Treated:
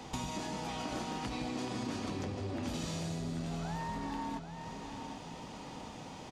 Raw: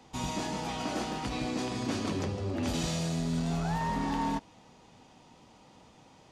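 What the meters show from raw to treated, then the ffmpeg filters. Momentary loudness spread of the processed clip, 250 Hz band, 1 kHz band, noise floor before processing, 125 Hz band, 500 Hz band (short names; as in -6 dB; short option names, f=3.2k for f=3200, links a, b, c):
8 LU, -5.5 dB, -5.0 dB, -58 dBFS, -6.0 dB, -5.0 dB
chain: -filter_complex "[0:a]acompressor=threshold=-46dB:ratio=8,asplit=2[a][b];[b]adelay=786,lowpass=f=5k:p=1,volume=-8dB,asplit=2[c][d];[d]adelay=786,lowpass=f=5k:p=1,volume=0.42,asplit=2[e][f];[f]adelay=786,lowpass=f=5k:p=1,volume=0.42,asplit=2[g][h];[h]adelay=786,lowpass=f=5k:p=1,volume=0.42,asplit=2[i][j];[j]adelay=786,lowpass=f=5k:p=1,volume=0.42[k];[c][e][g][i][k]amix=inputs=5:normalize=0[l];[a][l]amix=inputs=2:normalize=0,volume=9.5dB"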